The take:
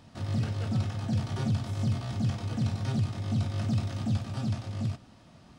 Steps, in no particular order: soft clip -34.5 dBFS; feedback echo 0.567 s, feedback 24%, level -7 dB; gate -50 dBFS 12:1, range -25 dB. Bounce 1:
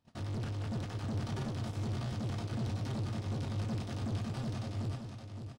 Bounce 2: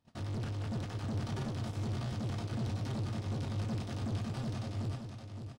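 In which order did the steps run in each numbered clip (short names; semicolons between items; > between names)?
gate > soft clip > feedback echo; soft clip > gate > feedback echo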